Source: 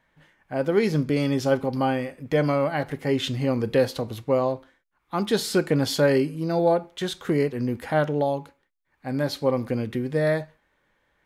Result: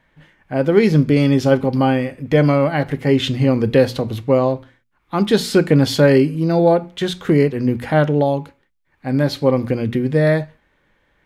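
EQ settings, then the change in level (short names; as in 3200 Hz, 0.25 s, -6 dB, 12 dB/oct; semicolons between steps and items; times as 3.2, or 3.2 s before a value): low shelf 480 Hz +10 dB; bell 2600 Hz +5.5 dB 1.9 oct; notches 60/120/180/240 Hz; +1.5 dB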